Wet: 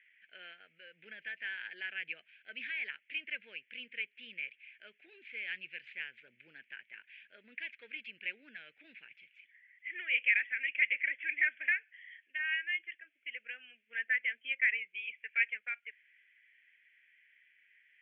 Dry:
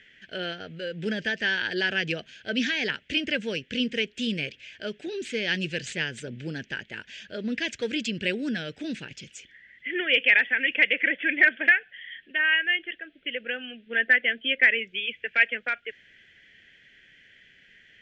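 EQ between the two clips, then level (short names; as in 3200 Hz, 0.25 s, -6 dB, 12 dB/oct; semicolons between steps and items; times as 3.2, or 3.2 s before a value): band-pass 2300 Hz, Q 4.9; air absorption 450 m; 0.0 dB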